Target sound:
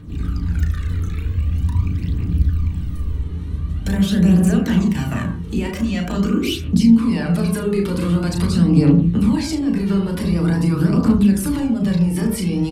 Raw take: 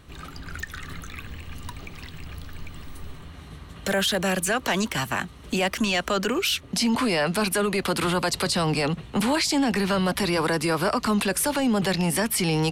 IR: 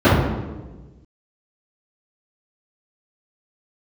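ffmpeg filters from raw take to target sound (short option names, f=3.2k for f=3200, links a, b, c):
-filter_complex "[0:a]lowshelf=f=420:t=q:w=1.5:g=8,acompressor=threshold=-20dB:ratio=6,aecho=1:1:35|75:0.562|0.168,asplit=2[a][b];[1:a]atrim=start_sample=2205,afade=t=out:st=0.18:d=0.01,atrim=end_sample=8379,asetrate=34839,aresample=44100[c];[b][c]afir=irnorm=-1:irlink=0,volume=-29dB[d];[a][d]amix=inputs=2:normalize=0,aphaser=in_gain=1:out_gain=1:delay=2.4:decay=0.47:speed=0.45:type=triangular,volume=-4.5dB"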